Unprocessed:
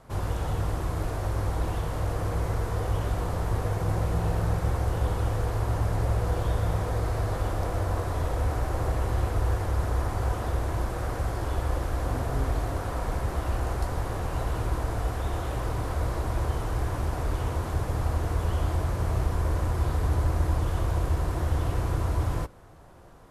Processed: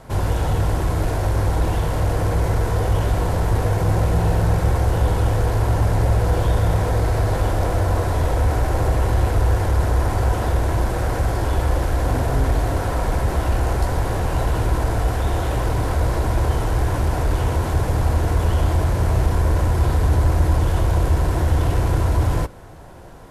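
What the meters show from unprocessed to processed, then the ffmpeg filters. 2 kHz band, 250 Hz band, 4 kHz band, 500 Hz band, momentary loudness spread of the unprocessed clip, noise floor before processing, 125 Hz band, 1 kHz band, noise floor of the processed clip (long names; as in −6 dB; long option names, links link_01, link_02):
+8.5 dB, +8.5 dB, +8.5 dB, +8.5 dB, 3 LU, −33 dBFS, +8.5 dB, +8.0 dB, −23 dBFS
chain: -filter_complex "[0:a]bandreject=frequency=1200:width=8.5,asplit=2[link_01][link_02];[link_02]asoftclip=type=tanh:threshold=-29.5dB,volume=-5dB[link_03];[link_01][link_03]amix=inputs=2:normalize=0,volume=6.5dB"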